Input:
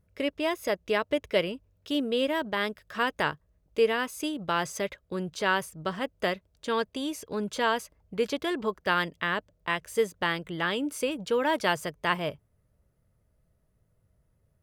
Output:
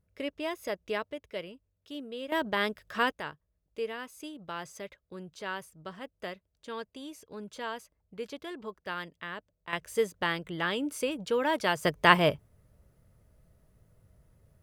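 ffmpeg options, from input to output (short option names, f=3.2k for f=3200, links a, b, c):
-af "asetnsamples=n=441:p=0,asendcmd='1.1 volume volume -12.5dB;2.32 volume volume 0dB;3.12 volume volume -11dB;9.73 volume volume -2dB;11.85 volume volume 7dB',volume=-6dB"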